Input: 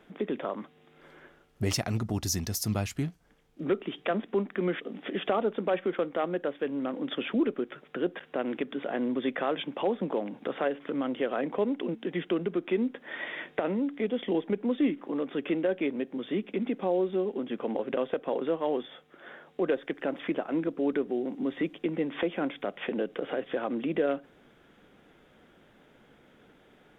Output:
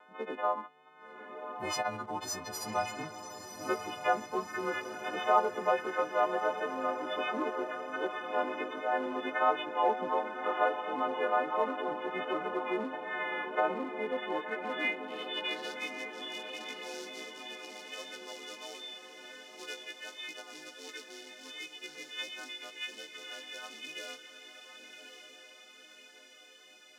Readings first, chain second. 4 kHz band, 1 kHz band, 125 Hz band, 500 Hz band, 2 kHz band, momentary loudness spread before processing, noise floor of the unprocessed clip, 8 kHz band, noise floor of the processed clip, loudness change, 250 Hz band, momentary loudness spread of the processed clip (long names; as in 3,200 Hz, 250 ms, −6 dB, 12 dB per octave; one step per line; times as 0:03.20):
+1.0 dB, +5.5 dB, below −15 dB, −5.0 dB, +3.0 dB, 6 LU, −61 dBFS, can't be measured, −56 dBFS, −3.5 dB, −12.5 dB, 18 LU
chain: every partial snapped to a pitch grid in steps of 3 semitones
in parallel at +2 dB: floating-point word with a short mantissa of 2 bits
on the sum: band-pass filter sweep 940 Hz → 5,500 Hz, 0:14.17–0:15.81
pitch vibrato 1.4 Hz 25 cents
feedback delay with all-pass diffusion 1,113 ms, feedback 59%, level −8 dB